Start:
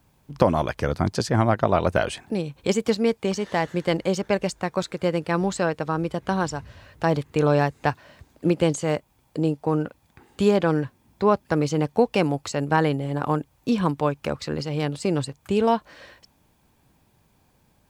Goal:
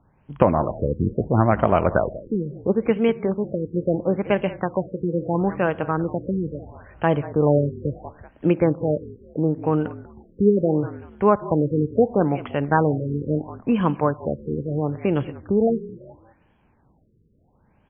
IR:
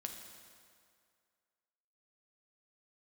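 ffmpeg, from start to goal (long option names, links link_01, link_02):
-filter_complex "[0:a]asplit=4[link_01][link_02][link_03][link_04];[link_02]adelay=190,afreqshift=-44,volume=-16.5dB[link_05];[link_03]adelay=380,afreqshift=-88,volume=-26.7dB[link_06];[link_04]adelay=570,afreqshift=-132,volume=-36.8dB[link_07];[link_01][link_05][link_06][link_07]amix=inputs=4:normalize=0,asplit=2[link_08][link_09];[1:a]atrim=start_sample=2205,afade=type=out:start_time=0.26:duration=0.01,atrim=end_sample=11907[link_10];[link_09][link_10]afir=irnorm=-1:irlink=0,volume=-8dB[link_11];[link_08][link_11]amix=inputs=2:normalize=0,afftfilt=real='re*lt(b*sr/1024,500*pow(3400/500,0.5+0.5*sin(2*PI*0.74*pts/sr)))':imag='im*lt(b*sr/1024,500*pow(3400/500,0.5+0.5*sin(2*PI*0.74*pts/sr)))':win_size=1024:overlap=0.75"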